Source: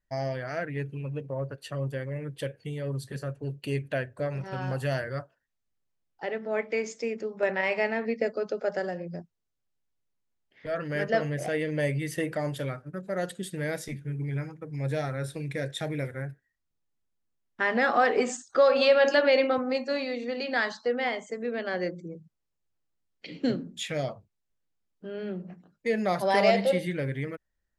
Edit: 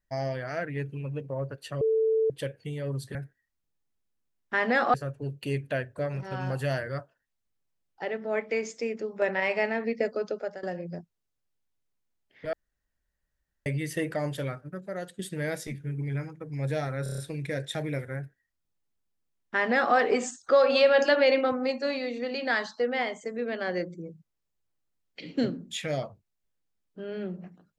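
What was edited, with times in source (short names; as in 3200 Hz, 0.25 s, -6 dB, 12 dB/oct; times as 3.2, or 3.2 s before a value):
1.81–2.3 bleep 443 Hz -21 dBFS
8.49–8.84 fade out, to -16 dB
10.74–11.87 room tone
12.82–13.4 fade out, to -10.5 dB
15.24 stutter 0.03 s, 6 plays
16.22–18.01 copy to 3.15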